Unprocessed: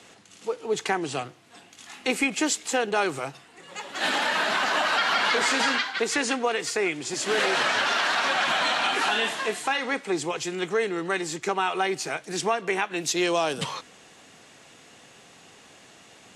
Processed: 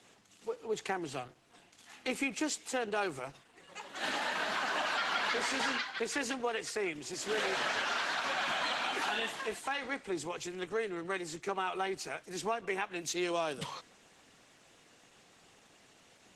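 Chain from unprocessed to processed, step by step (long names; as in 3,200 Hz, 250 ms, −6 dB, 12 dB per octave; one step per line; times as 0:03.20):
level −8.5 dB
Opus 16 kbit/s 48,000 Hz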